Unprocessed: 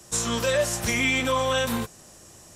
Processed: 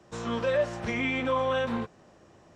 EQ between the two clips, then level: tape spacing loss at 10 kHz 25 dB; low shelf 110 Hz -11 dB; high shelf 5600 Hz -10 dB; 0.0 dB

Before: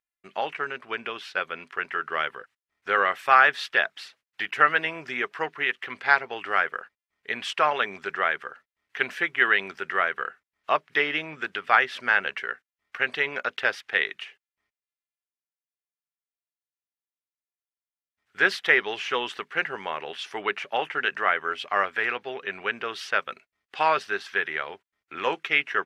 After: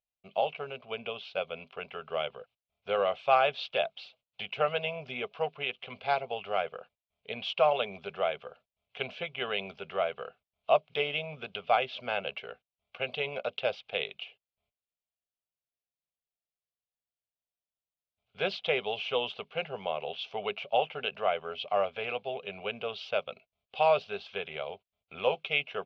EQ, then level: LPF 3300 Hz 24 dB/oct; band shelf 1200 Hz -13 dB 1.2 oct; fixed phaser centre 780 Hz, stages 4; +5.0 dB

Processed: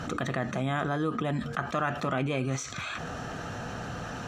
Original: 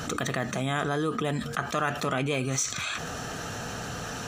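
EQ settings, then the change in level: high shelf 2800 Hz -8 dB; high shelf 7900 Hz -9.5 dB; notch 440 Hz, Q 12; 0.0 dB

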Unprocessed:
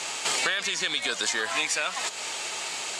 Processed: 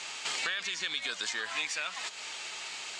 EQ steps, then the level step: air absorption 77 m; low shelf 410 Hz -6.5 dB; bell 610 Hz -6.5 dB 2.1 oct; -3.5 dB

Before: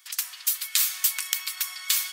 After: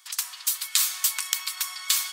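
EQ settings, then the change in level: ten-band EQ 500 Hz +3 dB, 1000 Hz +9 dB, 4000 Hz +4 dB, 8000 Hz +5 dB; -3.5 dB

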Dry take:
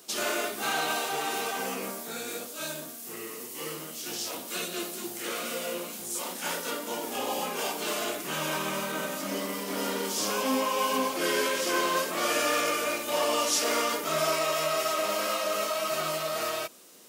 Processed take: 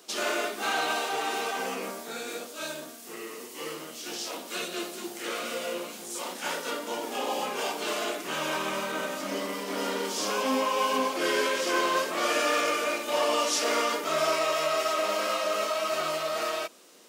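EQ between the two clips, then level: HPF 230 Hz 12 dB/oct; high shelf 8400 Hz -7 dB; bell 13000 Hz -4 dB 0.96 oct; +1.5 dB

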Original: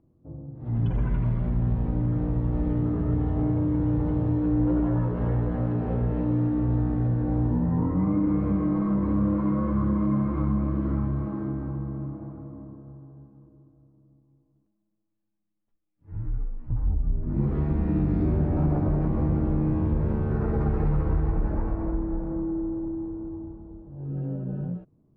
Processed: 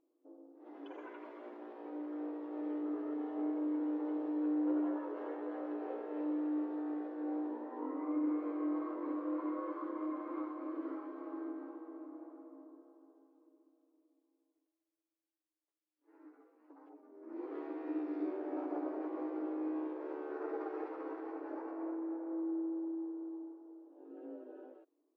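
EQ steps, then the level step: brick-wall FIR high-pass 270 Hz; -8.0 dB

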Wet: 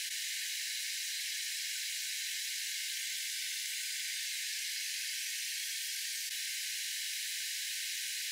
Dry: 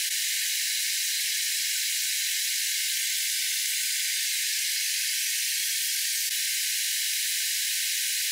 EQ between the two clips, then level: high shelf 7800 Hz -6.5 dB; -8.5 dB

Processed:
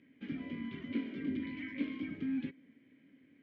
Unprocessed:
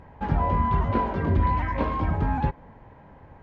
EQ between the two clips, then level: vowel filter i; HPF 130 Hz 12 dB/oct; high shelf 2400 Hz +9 dB; 0.0 dB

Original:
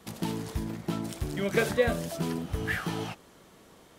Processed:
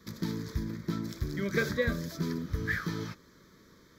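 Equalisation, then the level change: notch 1400 Hz, Q 23; fixed phaser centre 2800 Hz, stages 6; 0.0 dB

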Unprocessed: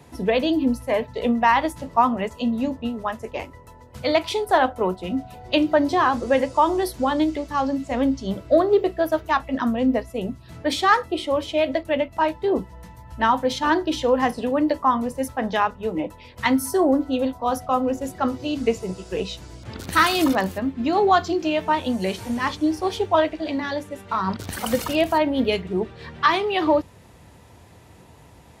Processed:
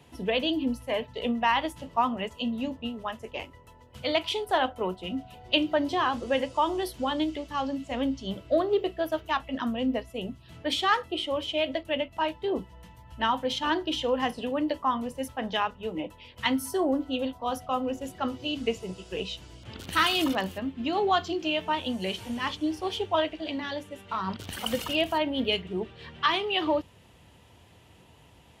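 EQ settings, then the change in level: bell 3000 Hz +11 dB 0.45 oct; -7.5 dB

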